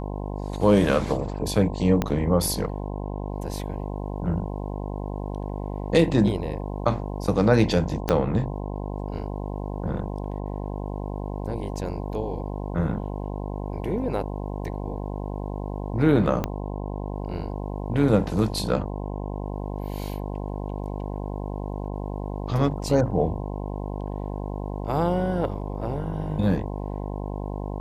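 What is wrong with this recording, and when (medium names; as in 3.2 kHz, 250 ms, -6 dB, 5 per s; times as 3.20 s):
buzz 50 Hz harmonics 21 -31 dBFS
2.02 s: pop -10 dBFS
8.09 s: pop -8 dBFS
16.44 s: pop -12 dBFS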